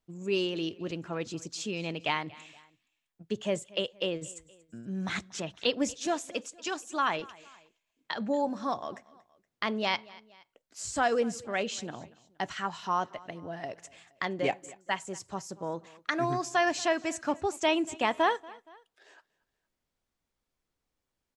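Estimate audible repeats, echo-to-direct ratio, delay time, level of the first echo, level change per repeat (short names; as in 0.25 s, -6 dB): 2, -21.0 dB, 0.235 s, -22.0 dB, -6.5 dB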